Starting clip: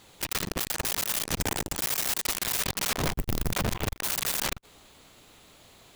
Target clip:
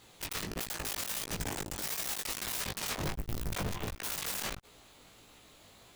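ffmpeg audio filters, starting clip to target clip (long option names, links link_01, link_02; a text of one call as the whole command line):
ffmpeg -i in.wav -af "asoftclip=type=tanh:threshold=-27.5dB,flanger=delay=17:depth=3.5:speed=1.5" out.wav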